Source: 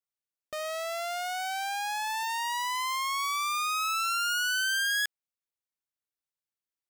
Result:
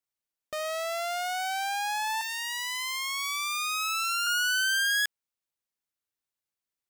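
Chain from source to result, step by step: 2.21–4.27 HPF 1400 Hz 24 dB/oct; gain +2 dB

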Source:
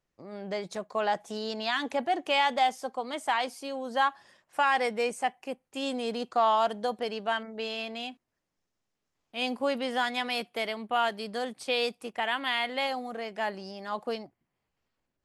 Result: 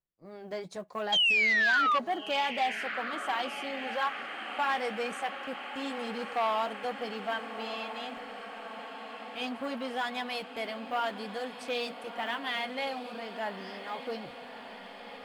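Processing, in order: block floating point 7-bit; gate -46 dBFS, range -18 dB; tone controls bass +3 dB, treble -2 dB; reverse; upward compressor, threshold -39 dBFS; reverse; flange 0.98 Hz, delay 5.1 ms, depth 3 ms, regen -46%; painted sound fall, 1.12–1.99, 1100–3300 Hz -24 dBFS; on a send: diffused feedback echo 1.304 s, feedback 72%, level -12 dB; on the sum: core saturation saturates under 1700 Hz

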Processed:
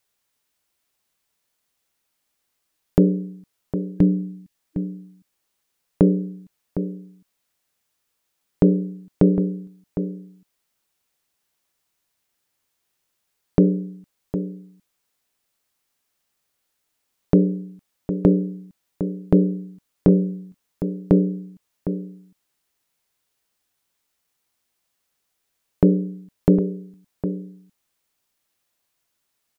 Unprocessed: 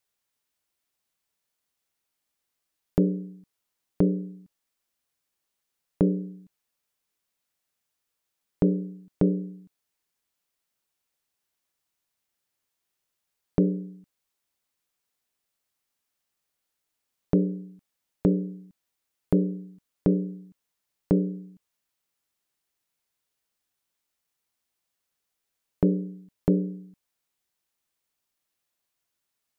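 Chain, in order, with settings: spectral gain 3.98–4.54, 320–1600 Hz -8 dB; outdoor echo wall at 130 m, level -10 dB; gain +6.5 dB

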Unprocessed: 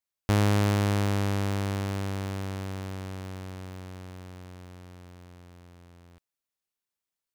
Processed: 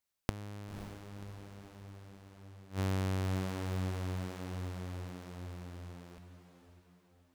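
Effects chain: low shelf 210 Hz +2 dB; flipped gate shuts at -28 dBFS, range -26 dB; diffused feedback echo 0.538 s, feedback 46%, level -9 dB; gain +2.5 dB

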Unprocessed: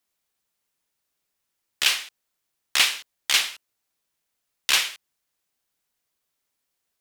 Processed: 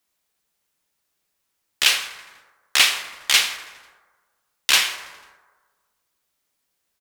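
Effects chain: frequency-shifting echo 82 ms, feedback 63%, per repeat -130 Hz, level -19.5 dB; on a send at -7.5 dB: reverb RT60 1.5 s, pre-delay 8 ms; on the sum: gain +3.5 dB

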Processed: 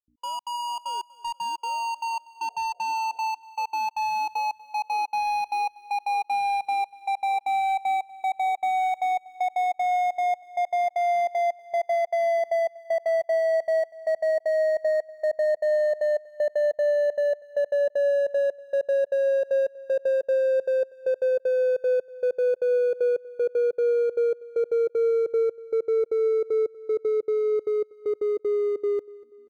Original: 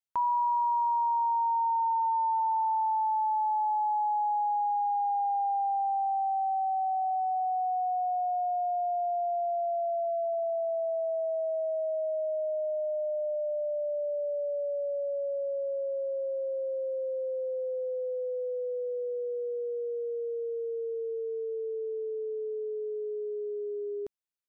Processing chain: median filter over 41 samples; EQ curve 250 Hz 0 dB, 450 Hz +10 dB, 1300 Hz +5 dB; hum 60 Hz, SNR 35 dB; notches 60/120/180 Hz; tempo 0.83×; step gate ".x.xx.xxxx.xx.." 193 bpm -60 dB; spectral repair 2.44–3.21, 340–740 Hz after; on a send: feedback echo 0.241 s, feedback 49%, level -21.5 dB; on the sum: gain +3 dB

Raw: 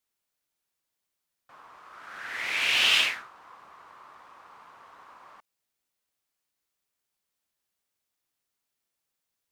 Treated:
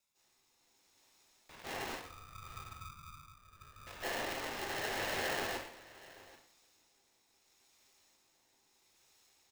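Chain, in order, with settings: minimum comb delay 0.65 ms; compressor 3:1, threshold -46 dBFS, peak gain reduction 19 dB; rotary speaker horn 0.75 Hz; tube stage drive 50 dB, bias 0.5; 1.79–3.87 Butterworth band-pass 680 Hz, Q 5.9; echo 0.782 s -19.5 dB; reverb RT60 0.60 s, pre-delay 0.146 s, DRR -12.5 dB; polarity switched at an audio rate 600 Hz; gain +9 dB

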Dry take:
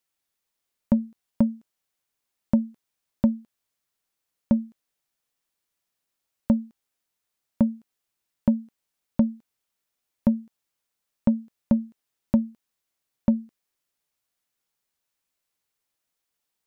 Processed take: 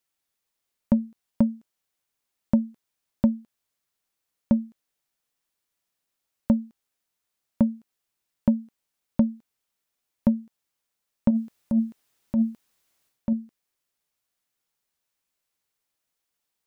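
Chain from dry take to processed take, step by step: 11.3–13.33 transient shaper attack -8 dB, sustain +10 dB

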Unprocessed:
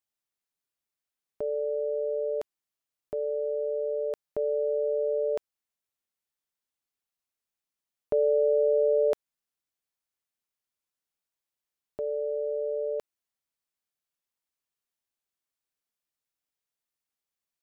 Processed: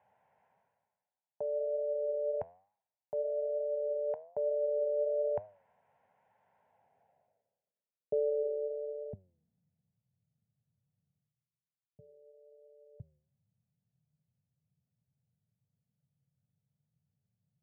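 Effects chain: HPF 100 Hz 24 dB/oct; reverse; upward compressor, threshold -31 dBFS; reverse; fixed phaser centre 1200 Hz, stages 6; flange 1.1 Hz, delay 9.4 ms, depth 4.3 ms, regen +86%; low-pass sweep 990 Hz -> 140 Hz, 6.56–10.03

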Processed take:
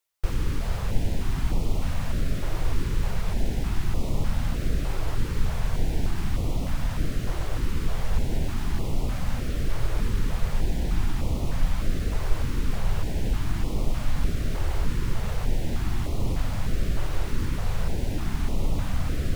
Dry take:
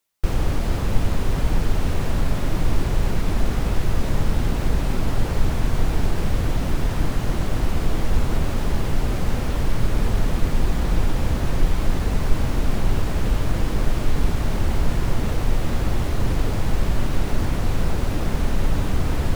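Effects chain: stepped notch 3.3 Hz 220–1600 Hz; gain -4.5 dB

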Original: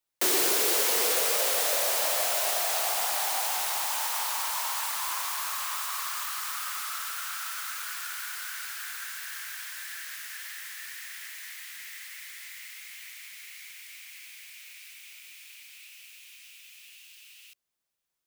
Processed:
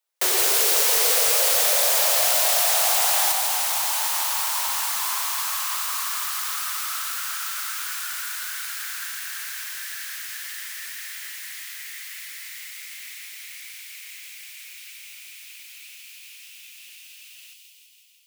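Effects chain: inverse Chebyshev high-pass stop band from 160 Hz, stop band 50 dB; thin delay 0.165 s, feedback 73%, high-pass 3000 Hz, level -3.5 dB; 1.06–3.32 fast leveller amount 70%; gain +3.5 dB

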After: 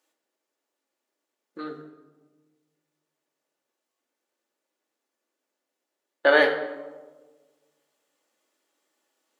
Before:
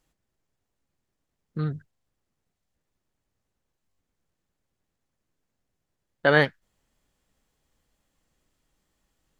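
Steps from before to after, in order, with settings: HPF 330 Hz 24 dB/oct; reverb RT60 1.4 s, pre-delay 3 ms, DRR 2 dB

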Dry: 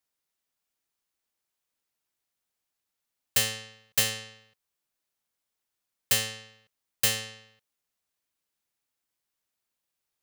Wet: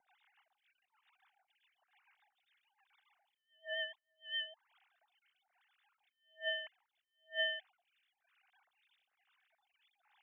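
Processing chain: sine-wave speech; dynamic EQ 1900 Hz, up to +5 dB, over -40 dBFS, Q 1.4; negative-ratio compressor -49 dBFS, ratio -0.5; rotary speaker horn 7 Hz, later 0.8 Hz, at 4.3; photocell phaser 1.1 Hz; gain +5 dB

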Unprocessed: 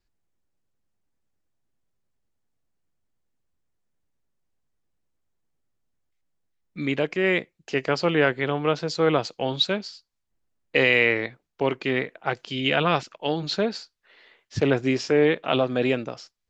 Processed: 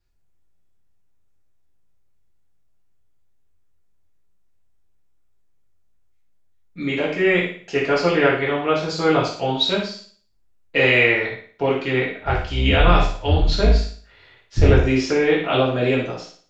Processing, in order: 12.16–14.75 octaver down 2 oct, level +3 dB; low shelf 100 Hz +10 dB; flutter echo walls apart 9.7 m, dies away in 0.46 s; non-linear reverb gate 0.13 s falling, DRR -5.5 dB; gain -3 dB

